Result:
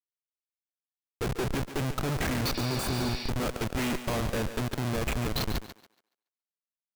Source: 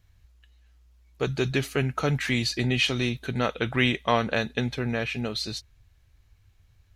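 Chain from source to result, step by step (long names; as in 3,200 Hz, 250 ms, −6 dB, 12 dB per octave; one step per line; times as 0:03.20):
comparator with hysteresis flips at −27 dBFS
feedback echo with a high-pass in the loop 141 ms, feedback 27%, high-pass 270 Hz, level −10 dB
healed spectral selection 0:02.57–0:03.27, 1,700–5,800 Hz before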